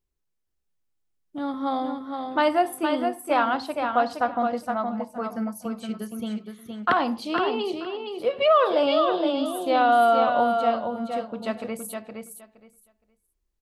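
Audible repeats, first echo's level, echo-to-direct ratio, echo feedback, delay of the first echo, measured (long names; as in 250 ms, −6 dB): 2, −5.5 dB, −5.5 dB, 17%, 467 ms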